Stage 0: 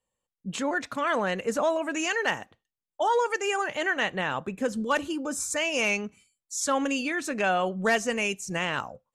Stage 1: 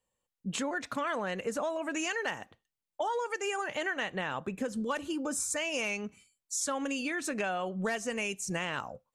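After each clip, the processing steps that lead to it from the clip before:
dynamic equaliser 9,300 Hz, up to +4 dB, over −51 dBFS, Q 2.5
downward compressor, threshold −30 dBFS, peak gain reduction 10.5 dB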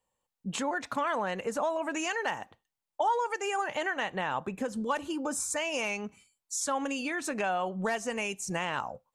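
parametric band 880 Hz +7 dB 0.72 octaves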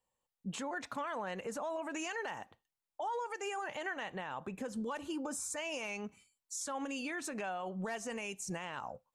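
brickwall limiter −26.5 dBFS, peak gain reduction 9.5 dB
level −4.5 dB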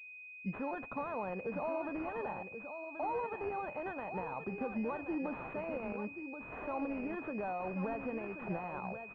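single-tap delay 1,080 ms −8.5 dB
switching amplifier with a slow clock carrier 2,500 Hz
level +2 dB

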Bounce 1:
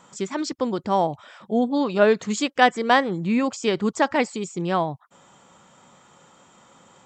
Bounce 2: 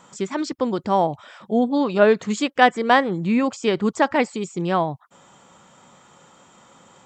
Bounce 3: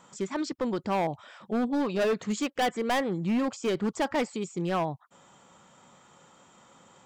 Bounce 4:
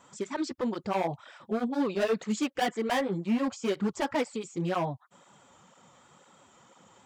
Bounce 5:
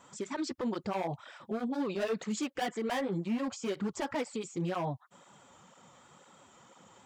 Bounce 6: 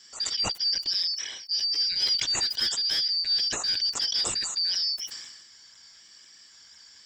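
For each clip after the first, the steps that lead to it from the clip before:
dynamic equaliser 6,100 Hz, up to −5 dB, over −42 dBFS, Q 0.86; level +2 dB
gain into a clipping stage and back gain 17 dB; level −5.5 dB
through-zero flanger with one copy inverted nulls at 2 Hz, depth 6.8 ms; level +1.5 dB
brickwall limiter −26.5 dBFS, peak gain reduction 6 dB
band-splitting scrambler in four parts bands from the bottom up 4321; level that may fall only so fast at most 45 dB per second; level +6 dB

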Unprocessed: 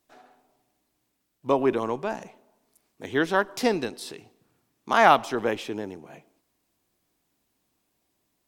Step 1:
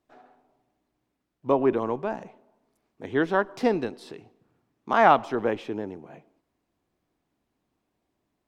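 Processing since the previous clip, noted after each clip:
low-pass filter 1,400 Hz 6 dB per octave
level +1 dB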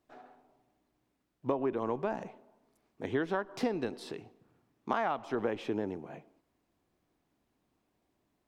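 downward compressor 16 to 1, threshold −27 dBFS, peak gain reduction 16 dB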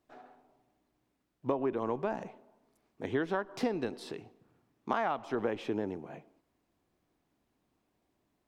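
no processing that can be heard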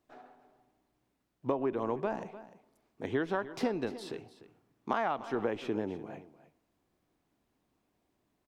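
single-tap delay 299 ms −15.5 dB

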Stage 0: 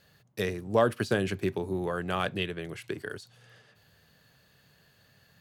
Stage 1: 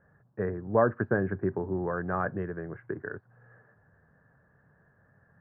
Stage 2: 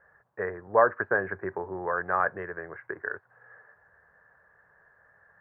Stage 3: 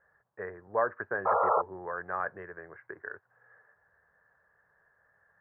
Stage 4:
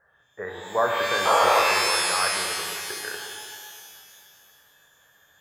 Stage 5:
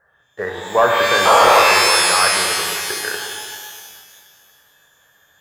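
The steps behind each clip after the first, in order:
Chebyshev low-pass filter 1,700 Hz, order 5; level +1 dB
octave-band graphic EQ 125/250/500/1,000/2,000 Hz −10/−9/+5/+7/+11 dB; level −3 dB
sound drawn into the spectrogram noise, 0:01.25–0:01.62, 430–1,400 Hz −18 dBFS; level −7.5 dB
reverb with rising layers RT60 2.1 s, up +12 semitones, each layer −2 dB, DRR 1.5 dB; level +4.5 dB
leveller curve on the samples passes 1; level +5.5 dB

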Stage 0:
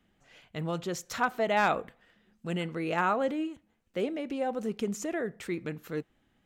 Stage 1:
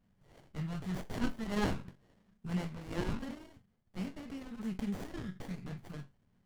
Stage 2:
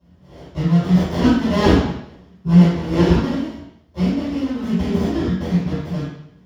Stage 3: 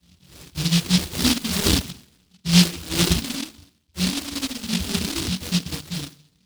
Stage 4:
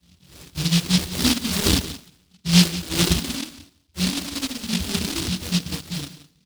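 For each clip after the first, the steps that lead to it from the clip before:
elliptic band-stop filter 210–1,300 Hz; resonators tuned to a chord F#2 major, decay 0.22 s; windowed peak hold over 33 samples; level +14 dB
convolution reverb RT60 0.70 s, pre-delay 3 ms, DRR −13 dB; level −1.5 dB
reverb reduction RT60 0.84 s; de-essing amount 90%; short delay modulated by noise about 3,800 Hz, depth 0.46 ms; level −4 dB
single-tap delay 176 ms −15.5 dB

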